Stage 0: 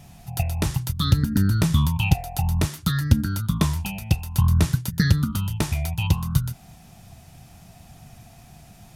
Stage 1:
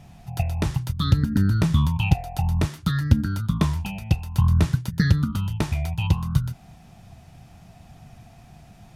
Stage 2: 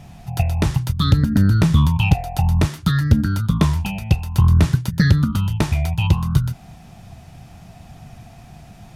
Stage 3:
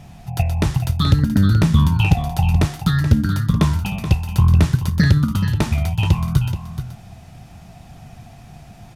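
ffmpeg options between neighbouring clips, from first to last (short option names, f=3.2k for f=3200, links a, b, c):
-af "lowpass=f=3.2k:p=1"
-af "acontrast=81,volume=-1dB"
-af "aecho=1:1:428:0.299"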